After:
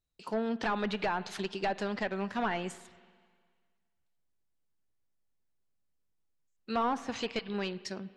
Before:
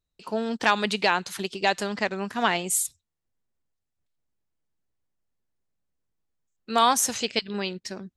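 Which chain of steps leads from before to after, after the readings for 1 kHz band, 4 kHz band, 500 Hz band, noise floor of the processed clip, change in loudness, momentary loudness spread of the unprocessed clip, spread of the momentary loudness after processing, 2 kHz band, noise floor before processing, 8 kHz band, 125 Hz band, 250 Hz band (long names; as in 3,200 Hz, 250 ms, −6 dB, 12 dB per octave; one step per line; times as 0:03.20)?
−9.0 dB, −12.5 dB, −6.0 dB, −77 dBFS, −9.0 dB, 11 LU, 5 LU, −10.0 dB, −83 dBFS, −23.0 dB, −4.0 dB, −4.0 dB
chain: gain into a clipping stage and back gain 22 dB
spring reverb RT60 1.8 s, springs 41/52/56 ms, chirp 45 ms, DRR 17.5 dB
treble cut that deepens with the level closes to 410 Hz, closed at −18.5 dBFS
level −3.5 dB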